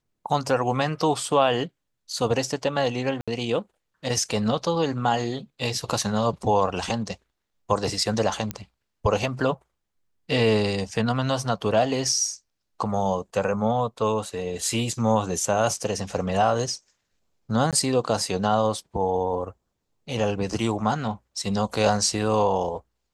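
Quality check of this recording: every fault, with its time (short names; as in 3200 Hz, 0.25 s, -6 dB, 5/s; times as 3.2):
3.21–3.28 gap 66 ms
8.51 pop -13 dBFS
17.71–17.73 gap 17 ms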